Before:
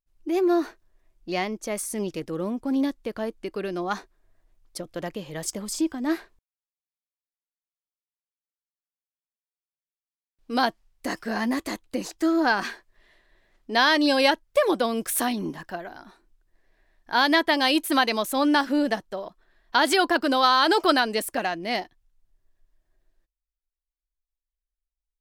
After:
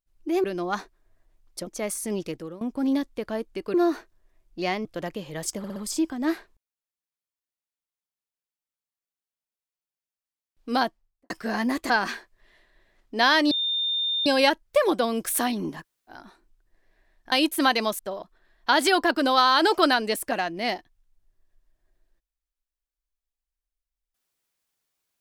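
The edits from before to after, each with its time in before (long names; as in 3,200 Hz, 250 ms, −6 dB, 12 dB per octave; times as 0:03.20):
0:00.44–0:01.55: swap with 0:03.62–0:04.85
0:02.16–0:02.49: fade out, to −20 dB
0:05.58: stutter 0.06 s, 4 plays
0:10.53–0:11.12: fade out and dull
0:11.72–0:12.46: remove
0:14.07: insert tone 3,620 Hz −23 dBFS 0.75 s
0:15.63–0:15.91: fill with room tone, crossfade 0.06 s
0:17.13–0:17.64: remove
0:18.31–0:19.05: remove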